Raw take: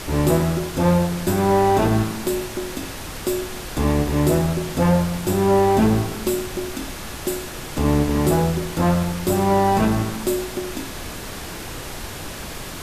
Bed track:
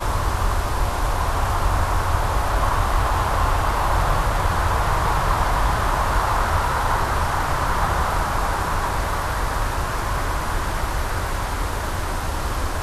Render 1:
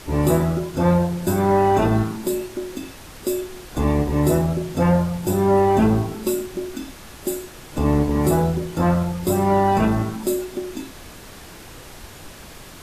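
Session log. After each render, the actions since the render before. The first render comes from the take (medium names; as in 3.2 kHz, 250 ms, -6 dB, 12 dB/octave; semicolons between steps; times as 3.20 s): noise print and reduce 8 dB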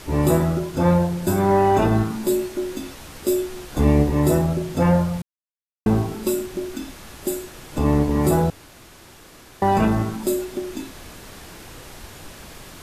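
2.09–4.10 s: doubling 14 ms -5 dB; 5.22–5.86 s: mute; 8.50–9.62 s: room tone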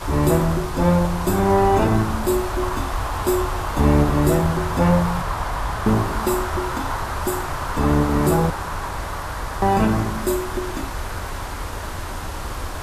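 add bed track -5 dB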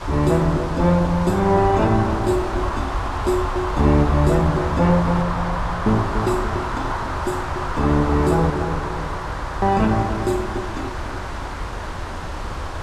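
distance through air 70 m; filtered feedback delay 289 ms, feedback 49%, level -6.5 dB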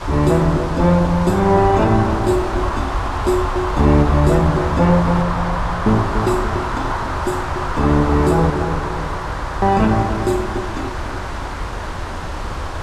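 trim +3 dB; peak limiter -3 dBFS, peak gain reduction 1.5 dB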